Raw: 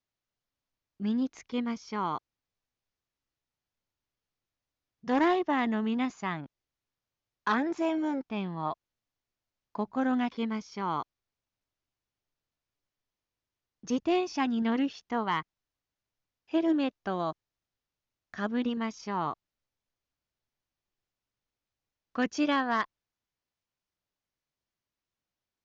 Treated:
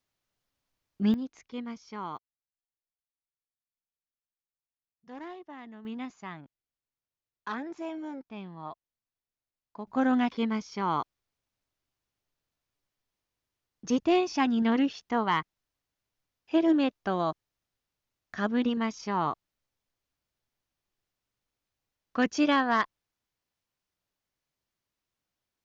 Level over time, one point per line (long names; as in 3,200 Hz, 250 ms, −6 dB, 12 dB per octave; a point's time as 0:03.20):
+6 dB
from 0:01.14 −6 dB
from 0:02.17 −17.5 dB
from 0:05.85 −8 dB
from 0:09.87 +3 dB